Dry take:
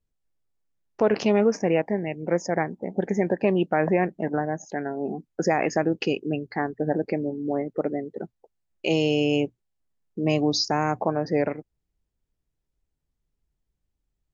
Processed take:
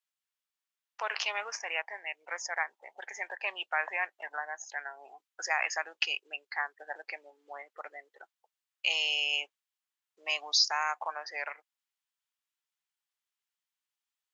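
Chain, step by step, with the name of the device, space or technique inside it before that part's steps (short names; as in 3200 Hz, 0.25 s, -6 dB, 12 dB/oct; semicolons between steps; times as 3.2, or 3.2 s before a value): headphones lying on a table (HPF 1000 Hz 24 dB/oct; bell 3100 Hz +4 dB 0.6 oct)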